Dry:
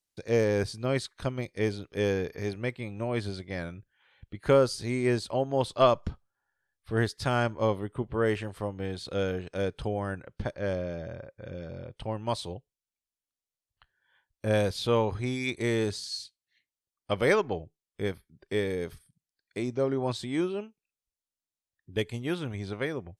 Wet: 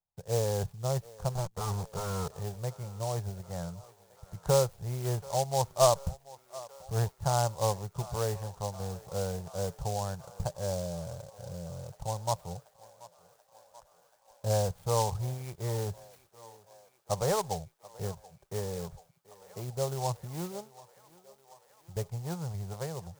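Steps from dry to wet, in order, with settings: bell 410 Hz +8 dB 1.5 oct; careless resampling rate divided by 4×, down filtered, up zero stuff; 1.35–2.28 fuzz box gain 27 dB, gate -34 dBFS; EQ curve 170 Hz 0 dB, 270 Hz -28 dB, 830 Hz +2 dB, 3500 Hz -30 dB; thinning echo 0.733 s, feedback 81%, high-pass 390 Hz, level -19 dB; noise-modulated delay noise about 5900 Hz, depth 0.064 ms

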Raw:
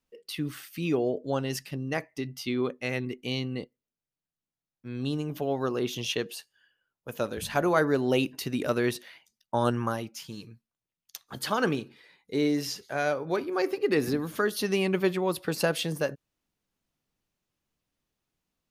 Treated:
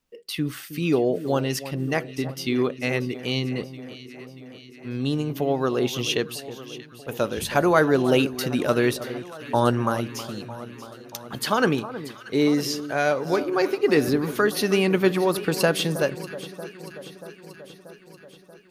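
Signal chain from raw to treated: echo with dull and thin repeats by turns 0.317 s, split 1400 Hz, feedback 78%, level -13 dB; gain +5.5 dB

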